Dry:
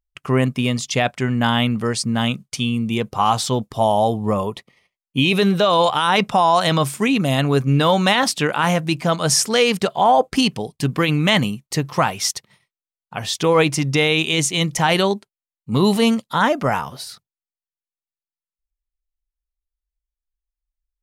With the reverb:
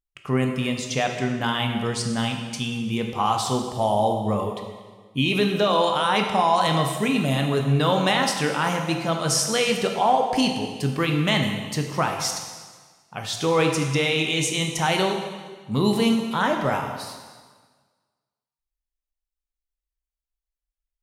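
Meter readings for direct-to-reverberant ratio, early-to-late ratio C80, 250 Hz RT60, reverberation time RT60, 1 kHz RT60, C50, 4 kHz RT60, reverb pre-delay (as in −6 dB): 3.0 dB, 7.0 dB, 1.5 s, 1.5 s, 1.5 s, 5.0 dB, 1.4 s, 7 ms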